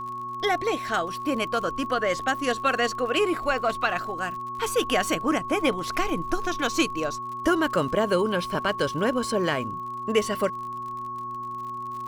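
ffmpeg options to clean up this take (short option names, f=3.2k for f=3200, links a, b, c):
-af "adeclick=t=4,bandreject=f=122.1:t=h:w=4,bandreject=f=244.2:t=h:w=4,bandreject=f=366.3:t=h:w=4,bandreject=f=1.1k:w=30"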